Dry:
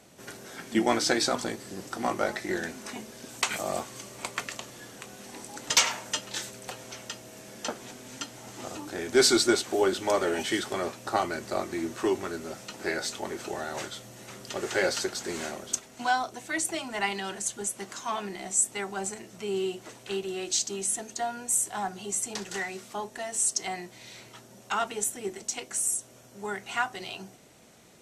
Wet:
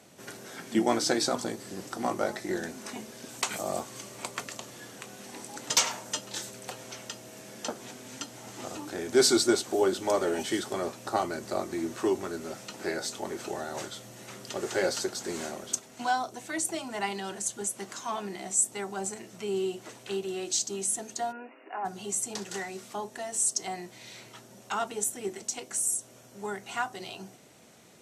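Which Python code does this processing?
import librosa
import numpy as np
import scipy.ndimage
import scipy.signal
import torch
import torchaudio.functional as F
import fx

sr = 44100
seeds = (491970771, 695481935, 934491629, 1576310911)

y = fx.brickwall_bandpass(x, sr, low_hz=230.0, high_hz=2900.0, at=(21.31, 21.84), fade=0.02)
y = scipy.signal.sosfilt(scipy.signal.butter(2, 84.0, 'highpass', fs=sr, output='sos'), y)
y = fx.dynamic_eq(y, sr, hz=2200.0, q=0.8, threshold_db=-43.0, ratio=4.0, max_db=-6)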